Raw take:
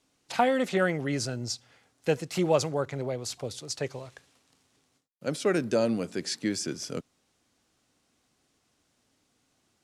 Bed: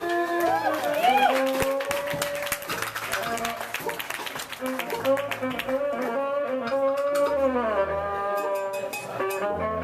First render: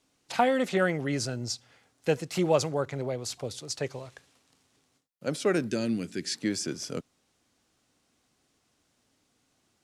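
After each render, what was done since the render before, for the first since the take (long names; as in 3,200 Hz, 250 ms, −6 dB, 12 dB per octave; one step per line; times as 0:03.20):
0:05.67–0:06.35: flat-topped bell 760 Hz −10.5 dB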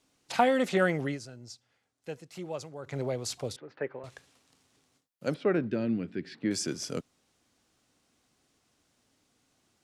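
0:01.05–0:02.96: duck −13.5 dB, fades 0.14 s
0:03.56–0:04.04: loudspeaker in its box 260–2,000 Hz, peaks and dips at 700 Hz −5 dB, 1,100 Hz −3 dB, 1,600 Hz +4 dB
0:05.34–0:06.51: high-frequency loss of the air 420 metres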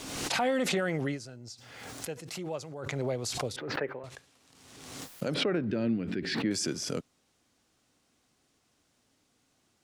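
brickwall limiter −20.5 dBFS, peak gain reduction 9.5 dB
background raised ahead of every attack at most 41 dB per second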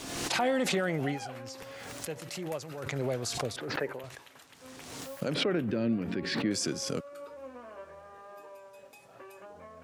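mix in bed −22 dB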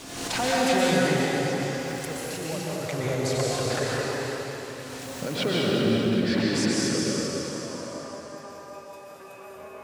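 on a send: delay that swaps between a low-pass and a high-pass 192 ms, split 1,200 Hz, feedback 71%, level −6 dB
on the sum: dense smooth reverb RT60 2.8 s, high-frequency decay 0.95×, pre-delay 110 ms, DRR −5 dB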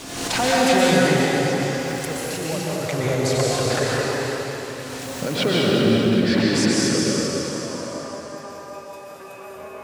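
level +5.5 dB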